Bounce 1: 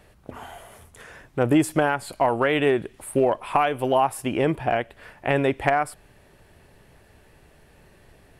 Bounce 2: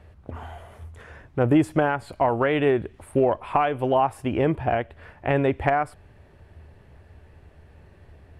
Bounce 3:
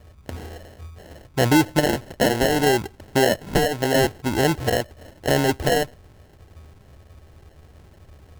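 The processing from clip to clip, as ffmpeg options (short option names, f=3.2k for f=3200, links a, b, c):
-af "lowpass=f=2k:p=1,equalizer=f=80:w=2.3:g=14"
-af "acrusher=samples=37:mix=1:aa=0.000001,volume=2dB"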